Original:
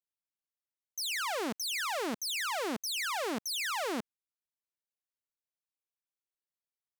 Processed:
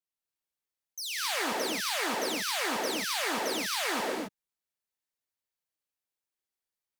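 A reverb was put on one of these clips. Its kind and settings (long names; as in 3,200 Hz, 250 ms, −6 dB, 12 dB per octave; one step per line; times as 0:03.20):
reverb whose tail is shaped and stops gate 290 ms rising, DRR −4 dB
level −2 dB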